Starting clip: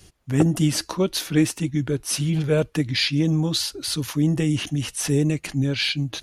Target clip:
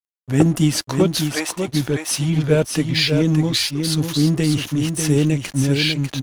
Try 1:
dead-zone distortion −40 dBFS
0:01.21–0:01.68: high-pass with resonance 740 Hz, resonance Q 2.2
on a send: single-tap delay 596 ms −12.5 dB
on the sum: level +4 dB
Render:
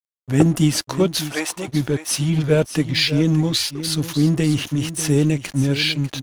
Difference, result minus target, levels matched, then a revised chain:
echo-to-direct −6.5 dB
dead-zone distortion −40 dBFS
0:01.21–0:01.68: high-pass with resonance 740 Hz, resonance Q 2.2
on a send: single-tap delay 596 ms −6 dB
on the sum: level +4 dB

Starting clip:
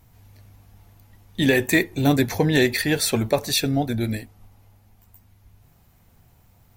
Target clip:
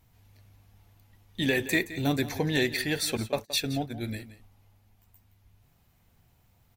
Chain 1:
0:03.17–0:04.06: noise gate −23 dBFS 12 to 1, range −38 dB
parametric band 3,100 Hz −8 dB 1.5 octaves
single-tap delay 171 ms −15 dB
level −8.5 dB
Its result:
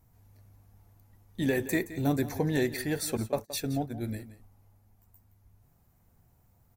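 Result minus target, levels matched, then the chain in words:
4,000 Hz band −7.5 dB
0:03.17–0:04.06: noise gate −23 dBFS 12 to 1, range −38 dB
parametric band 3,100 Hz +4 dB 1.5 octaves
single-tap delay 171 ms −15 dB
level −8.5 dB

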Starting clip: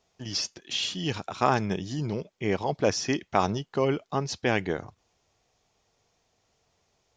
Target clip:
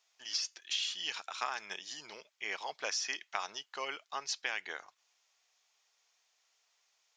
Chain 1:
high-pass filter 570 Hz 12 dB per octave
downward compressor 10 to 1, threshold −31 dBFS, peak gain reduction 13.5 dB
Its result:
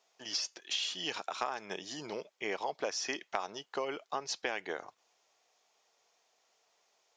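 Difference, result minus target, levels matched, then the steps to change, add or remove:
500 Hz band +8.5 dB
change: high-pass filter 1,400 Hz 12 dB per octave

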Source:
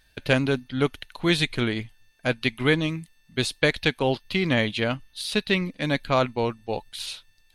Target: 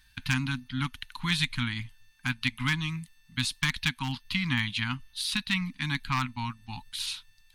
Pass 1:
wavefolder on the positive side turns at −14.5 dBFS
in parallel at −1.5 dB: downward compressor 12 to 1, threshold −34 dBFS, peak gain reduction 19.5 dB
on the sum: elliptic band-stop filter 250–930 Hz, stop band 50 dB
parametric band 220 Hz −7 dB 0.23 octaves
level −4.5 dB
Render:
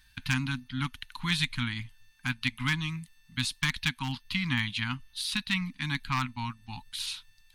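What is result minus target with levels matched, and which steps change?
downward compressor: peak gain reduction +6 dB
change: downward compressor 12 to 1, threshold −27.5 dBFS, peak gain reduction 13.5 dB

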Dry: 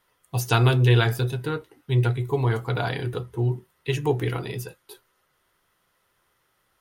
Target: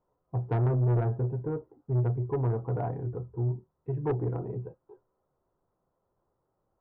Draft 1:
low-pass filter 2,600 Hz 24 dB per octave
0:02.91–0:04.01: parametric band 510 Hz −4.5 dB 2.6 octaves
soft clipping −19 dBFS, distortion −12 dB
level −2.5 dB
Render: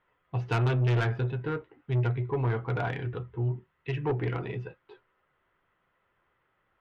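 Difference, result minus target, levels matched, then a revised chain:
2,000 Hz band +15.0 dB
low-pass filter 870 Hz 24 dB per octave
0:02.91–0:04.01: parametric band 510 Hz −4.5 dB 2.6 octaves
soft clipping −19 dBFS, distortion −12 dB
level −2.5 dB

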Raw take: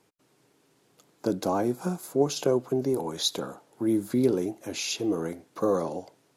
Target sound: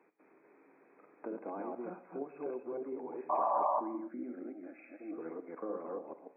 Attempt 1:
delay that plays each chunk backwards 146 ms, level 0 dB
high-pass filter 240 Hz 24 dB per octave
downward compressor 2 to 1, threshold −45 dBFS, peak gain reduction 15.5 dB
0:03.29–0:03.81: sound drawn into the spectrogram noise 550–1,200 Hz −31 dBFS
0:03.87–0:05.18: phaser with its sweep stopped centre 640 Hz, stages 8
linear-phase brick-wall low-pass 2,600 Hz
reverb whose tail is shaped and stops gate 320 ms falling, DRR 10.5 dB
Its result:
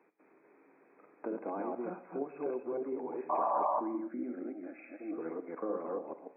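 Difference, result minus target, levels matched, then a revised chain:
downward compressor: peak gain reduction −3.5 dB
delay that plays each chunk backwards 146 ms, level 0 dB
high-pass filter 240 Hz 24 dB per octave
downward compressor 2 to 1, threshold −52 dBFS, peak gain reduction 19 dB
0:03.29–0:03.81: sound drawn into the spectrogram noise 550–1,200 Hz −31 dBFS
0:03.87–0:05.18: phaser with its sweep stopped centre 640 Hz, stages 8
linear-phase brick-wall low-pass 2,600 Hz
reverb whose tail is shaped and stops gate 320 ms falling, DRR 10.5 dB

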